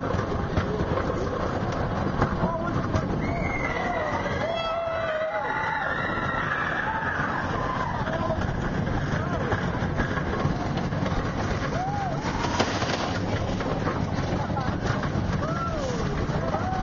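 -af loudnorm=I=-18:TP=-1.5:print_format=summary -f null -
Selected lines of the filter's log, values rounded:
Input Integrated:    -27.1 LUFS
Input True Peak:      -8.8 dBTP
Input LRA:             0.8 LU
Input Threshold:     -37.1 LUFS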